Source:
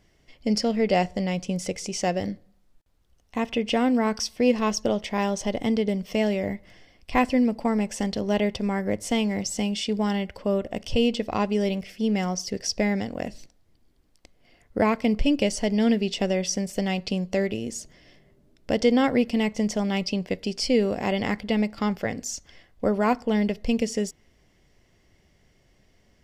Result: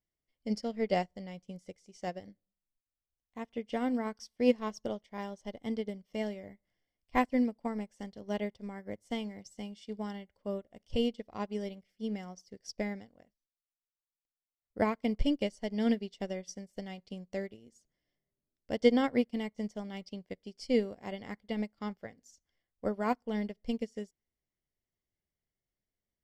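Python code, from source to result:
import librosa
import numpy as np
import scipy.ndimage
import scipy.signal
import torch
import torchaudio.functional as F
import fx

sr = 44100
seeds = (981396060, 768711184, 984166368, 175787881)

y = fx.edit(x, sr, fx.fade_down_up(start_s=13.17, length_s=1.61, db=-19.0, fade_s=0.17), tone=tone)
y = fx.notch(y, sr, hz=2600.0, q=8.8)
y = fx.upward_expand(y, sr, threshold_db=-35.0, expansion=2.5)
y = y * librosa.db_to_amplitude(-2.0)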